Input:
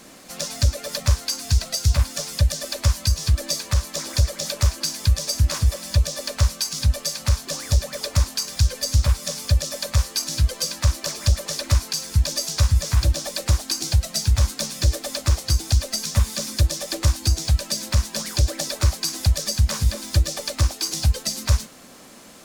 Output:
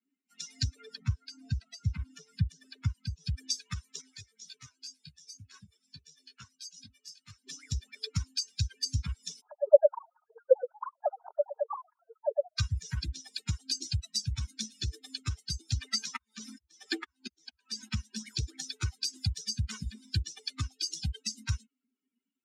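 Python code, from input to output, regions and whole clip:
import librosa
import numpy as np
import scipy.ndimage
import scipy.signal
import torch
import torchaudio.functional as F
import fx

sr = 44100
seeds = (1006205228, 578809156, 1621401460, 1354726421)

y = fx.chain(x, sr, fx.high_shelf(hz=2100.0, db=-5.5),
    fx.band_squash(depth_pct=40), at=(0.76, 3.26))
y = fx.chain(y, sr, fx.highpass(hz=100.0, slope=12),
    fx.detune_double(cents=11), at=(4.01, 7.44))
y = fx.chain(y, sr, fx.sine_speech(),
    fx.lowpass(hz=1000.0, slope=24), at=(9.41, 12.58))
y = fx.chain(y, sr, fx.auto_swell(attack_ms=322.0),
    fx.peak_eq(hz=1100.0, db=6.5, octaves=2.5), at=(15.73, 17.89))
y = fx.bin_expand(y, sr, power=3.0)
y = scipy.signal.sosfilt(scipy.signal.cheby1(2, 1.0, [140.0, 5400.0], 'bandpass', fs=sr, output='sos'), y)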